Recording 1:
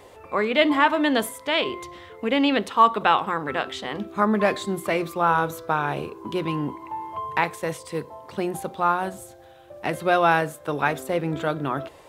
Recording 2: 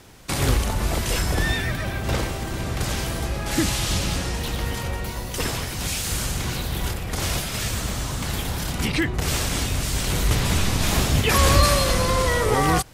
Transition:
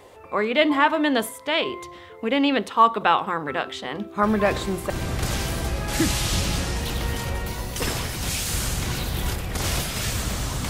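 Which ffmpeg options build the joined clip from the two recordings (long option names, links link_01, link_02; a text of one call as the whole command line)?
ffmpeg -i cue0.wav -i cue1.wav -filter_complex "[1:a]asplit=2[link_01][link_02];[0:a]apad=whole_dur=10.69,atrim=end=10.69,atrim=end=4.902[link_03];[link_02]atrim=start=2.478:end=8.27[link_04];[link_01]atrim=start=1.81:end=2.48,asetpts=PTS-STARTPTS,volume=-7.5dB,afade=type=in:duration=0.004:curve=hsin,afade=type=out:start_time=0.666:duration=0.004:curve=hsin,adelay=4230[link_05];[link_03][link_04]acrossfade=duration=0.004:curve1=hsin:curve2=hsin[link_06];[link_06][link_05]amix=inputs=2:normalize=0" out.wav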